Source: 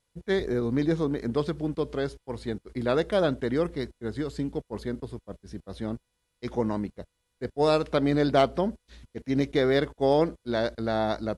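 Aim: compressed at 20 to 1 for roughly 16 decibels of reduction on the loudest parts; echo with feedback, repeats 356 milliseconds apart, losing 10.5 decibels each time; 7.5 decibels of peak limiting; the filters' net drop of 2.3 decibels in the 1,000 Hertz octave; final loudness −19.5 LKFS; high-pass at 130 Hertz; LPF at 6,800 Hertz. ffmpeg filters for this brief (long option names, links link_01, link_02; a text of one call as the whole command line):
ffmpeg -i in.wav -af "highpass=130,lowpass=6800,equalizer=frequency=1000:width_type=o:gain=-3.5,acompressor=threshold=-34dB:ratio=20,alimiter=level_in=7dB:limit=-24dB:level=0:latency=1,volume=-7dB,aecho=1:1:356|712|1068:0.299|0.0896|0.0269,volume=23dB" out.wav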